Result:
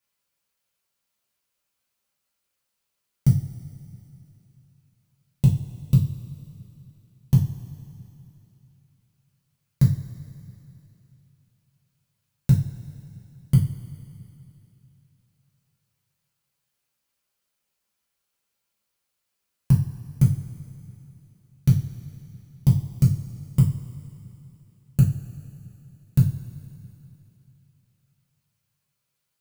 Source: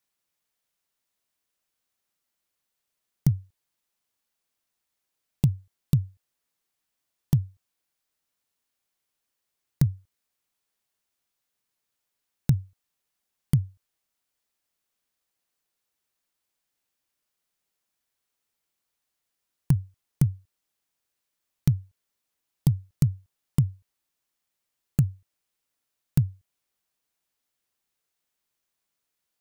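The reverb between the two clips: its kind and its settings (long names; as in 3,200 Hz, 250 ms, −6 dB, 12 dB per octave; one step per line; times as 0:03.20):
coupled-rooms reverb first 0.35 s, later 3 s, from −18 dB, DRR −5.5 dB
level −3.5 dB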